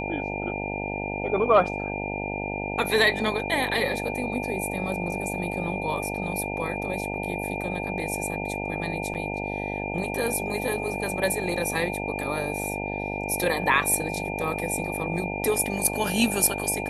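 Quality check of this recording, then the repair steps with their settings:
buzz 50 Hz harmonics 18 -32 dBFS
tone 2400 Hz -33 dBFS
9.14–9.15 gap 8.1 ms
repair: notch 2400 Hz, Q 30; de-hum 50 Hz, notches 18; interpolate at 9.14, 8.1 ms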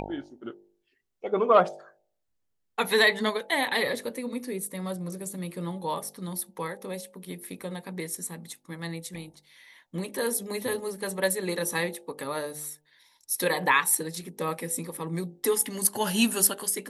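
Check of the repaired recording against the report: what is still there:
none

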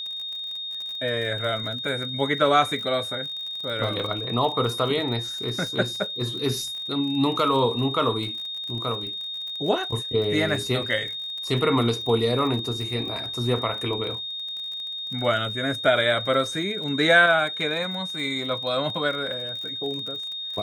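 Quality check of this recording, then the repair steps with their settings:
crackle 43/s -32 dBFS
tone 3700 Hz -30 dBFS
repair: de-click; notch 3700 Hz, Q 30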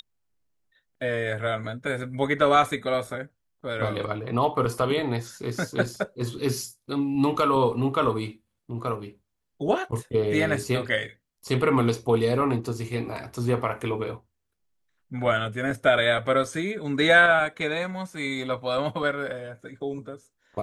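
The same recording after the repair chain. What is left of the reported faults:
none

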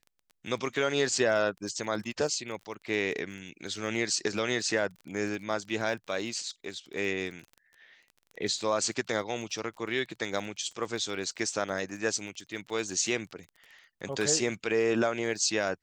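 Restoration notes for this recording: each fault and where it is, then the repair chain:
crackle 23/s -39 dBFS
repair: de-click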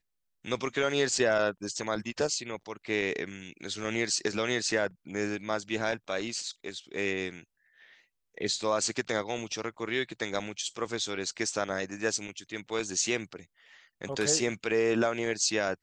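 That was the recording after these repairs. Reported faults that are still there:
none

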